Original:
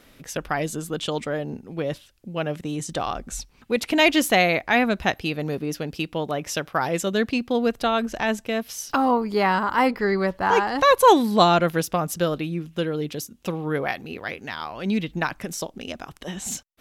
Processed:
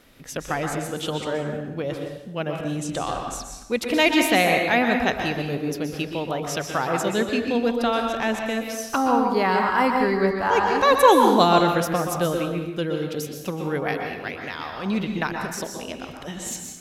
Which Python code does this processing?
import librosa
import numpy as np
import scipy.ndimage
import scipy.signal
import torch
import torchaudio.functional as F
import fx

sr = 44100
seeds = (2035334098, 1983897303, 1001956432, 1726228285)

y = fx.rev_plate(x, sr, seeds[0], rt60_s=1.0, hf_ratio=0.7, predelay_ms=110, drr_db=2.5)
y = y * 10.0 ** (-1.5 / 20.0)